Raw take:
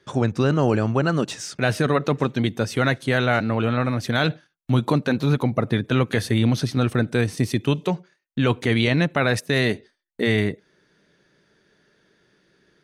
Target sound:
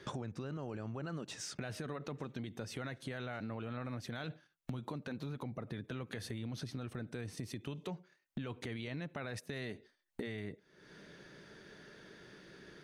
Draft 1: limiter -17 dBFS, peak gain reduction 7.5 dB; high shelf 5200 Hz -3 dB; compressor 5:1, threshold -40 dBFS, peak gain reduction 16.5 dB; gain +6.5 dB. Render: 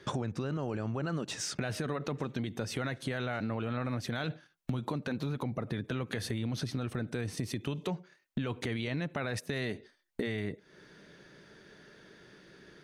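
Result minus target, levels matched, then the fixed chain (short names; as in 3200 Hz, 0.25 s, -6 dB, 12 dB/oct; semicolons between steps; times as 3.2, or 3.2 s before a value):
compressor: peak gain reduction -7.5 dB
limiter -17 dBFS, peak gain reduction 7.5 dB; high shelf 5200 Hz -3 dB; compressor 5:1, threshold -49.5 dBFS, peak gain reduction 24.5 dB; gain +6.5 dB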